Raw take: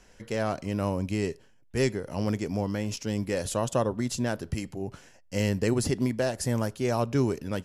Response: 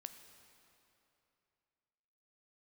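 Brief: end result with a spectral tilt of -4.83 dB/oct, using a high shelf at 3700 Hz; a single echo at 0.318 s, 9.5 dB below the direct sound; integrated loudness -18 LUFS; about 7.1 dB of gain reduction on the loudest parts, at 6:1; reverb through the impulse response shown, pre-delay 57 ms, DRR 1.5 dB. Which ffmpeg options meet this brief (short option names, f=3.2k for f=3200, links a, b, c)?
-filter_complex "[0:a]highshelf=f=3.7k:g=6,acompressor=threshold=-28dB:ratio=6,aecho=1:1:318:0.335,asplit=2[a][b];[1:a]atrim=start_sample=2205,adelay=57[c];[b][c]afir=irnorm=-1:irlink=0,volume=3.5dB[d];[a][d]amix=inputs=2:normalize=0,volume=13dB"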